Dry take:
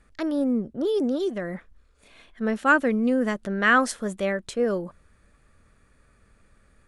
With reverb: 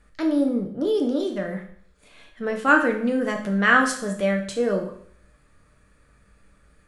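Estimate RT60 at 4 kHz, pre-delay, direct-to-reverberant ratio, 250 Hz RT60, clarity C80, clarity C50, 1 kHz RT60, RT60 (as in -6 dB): 0.60 s, 6 ms, 2.0 dB, 0.60 s, 11.5 dB, 8.0 dB, 0.60 s, 0.60 s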